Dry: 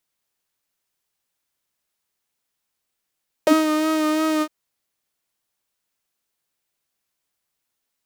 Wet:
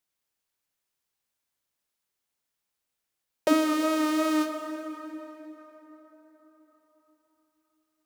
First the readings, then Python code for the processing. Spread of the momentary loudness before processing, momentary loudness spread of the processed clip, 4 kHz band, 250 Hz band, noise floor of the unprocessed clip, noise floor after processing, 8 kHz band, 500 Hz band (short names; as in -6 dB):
8 LU, 20 LU, -5.0 dB, -4.5 dB, -79 dBFS, -84 dBFS, -5.0 dB, -5.0 dB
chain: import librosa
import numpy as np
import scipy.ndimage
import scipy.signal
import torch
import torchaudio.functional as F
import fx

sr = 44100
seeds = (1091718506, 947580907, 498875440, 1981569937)

y = fx.rev_plate(x, sr, seeds[0], rt60_s=4.6, hf_ratio=0.55, predelay_ms=0, drr_db=6.0)
y = y * 10.0 ** (-5.5 / 20.0)